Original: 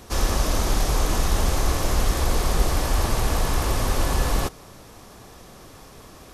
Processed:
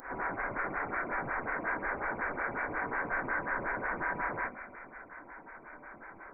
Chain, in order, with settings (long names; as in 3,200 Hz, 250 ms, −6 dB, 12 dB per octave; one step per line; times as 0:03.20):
high-pass filter 1,500 Hz 12 dB per octave
in parallel at +1 dB: downward compressor, threshold −46 dBFS, peak gain reduction 16 dB
on the sum: backwards echo 62 ms −8 dB
on a send at −4 dB: convolution reverb RT60 2.2 s, pre-delay 3 ms
on the sum: voice inversion scrambler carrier 2,700 Hz
phaser with staggered stages 5.5 Hz
level +2 dB